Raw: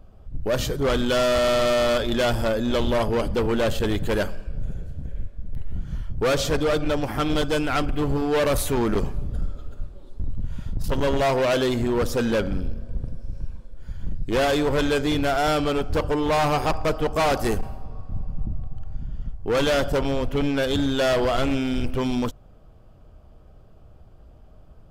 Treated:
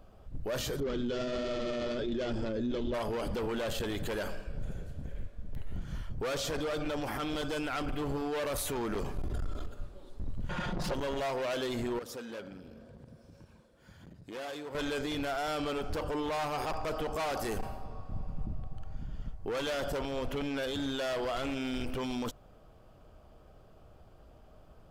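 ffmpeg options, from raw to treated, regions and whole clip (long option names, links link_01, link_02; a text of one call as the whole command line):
ffmpeg -i in.wav -filter_complex "[0:a]asettb=1/sr,asplit=3[link_01][link_02][link_03];[link_01]atrim=end=0.804[link_04];[link_02]atrim=start=0.8:end=2.94,asetpts=PTS-STARTPTS,afade=type=in:duration=0.004:curve=qsin,afade=type=out:start_time=2.136:duration=0.004:curve=qsin,lowpass=frequency=6500:width=0.5412,lowpass=frequency=6500:width=1.3066,lowshelf=frequency=520:width_type=q:width=1.5:gain=10.5,flanger=delay=1.3:depth=9.4:regen=41:speed=1.4:shape=triangular[link_05];[link_03]atrim=start=2.936[link_06];[link_04][link_05]acrossfade=duration=0.004:curve1=hsin:curve2=qsin[link_07];[link_07][link_06]acrossfade=duration=0.004:curve1=qsin:curve2=hsin,asettb=1/sr,asplit=3[link_08][link_09][link_10];[link_08]atrim=end=9.174[link_11];[link_09]atrim=start=9.17:end=9.67,asetpts=PTS-STARTPTS,afade=type=in:duration=0.004:curve=qsin,afade=type=out:start_time=0.496:duration=0.004:curve=qsin,aecho=1:1:2.9:0.63,atrim=end_sample=22050,aeval=exprs='clip(val(0),-1,0.0501)':channel_layout=same,acontrast=29[link_12];[link_10]atrim=start=9.666[link_13];[link_11][link_12]acrossfade=duration=0.004:curve1=hsin:curve2=qsin[link_14];[link_14][link_13]acrossfade=duration=0.004:curve1=qsin:curve2=hsin,asettb=1/sr,asplit=3[link_15][link_16][link_17];[link_15]atrim=end=10.494[link_18];[link_16]atrim=start=10.49:end=10.94,asetpts=PTS-STARTPTS,afade=type=in:duration=0.004:curve=qsin,afade=type=out:start_time=0.446:duration=0.004:curve=qsin,highshelf=frequency=11000:gain=-11,aecho=1:1:5.6:0.88,atrim=end_sample=19845,asplit=2[link_19][link_20];[link_20]highpass=frequency=720:poles=1,volume=27dB,asoftclip=type=tanh:threshold=-12dB[link_21];[link_19][link_21]amix=inputs=2:normalize=0,lowpass=frequency=1200:poles=1,volume=-6dB[link_22];[link_17]atrim=start=10.936[link_23];[link_18][link_22]acrossfade=duration=0.004:curve1=hsin:curve2=qsin[link_24];[link_24][link_23]acrossfade=duration=0.004:curve1=qsin:curve2=hsin,asettb=1/sr,asplit=3[link_25][link_26][link_27];[link_25]atrim=end=11.994[link_28];[link_26]atrim=start=11.99:end=14.75,asetpts=PTS-STARTPTS,afade=type=in:duration=0.004:curve=qsin,afade=type=out:start_time=2.756:duration=0.004:curve=qsin,highpass=120,flanger=delay=0.4:depth=3.9:regen=-72:speed=1.9:shape=sinusoidal,acompressor=threshold=-41dB:ratio=3:attack=3.2:release=140:knee=1:detection=peak[link_29];[link_27]atrim=start=14.746[link_30];[link_28][link_29]acrossfade=duration=0.004:curve1=hsin:curve2=qsin[link_31];[link_31][link_30]acrossfade=duration=0.004:curve1=qsin:curve2=hsin,lowshelf=frequency=230:gain=-9.5,alimiter=level_in=3dB:limit=-24dB:level=0:latency=1:release=26,volume=-3dB" out.wav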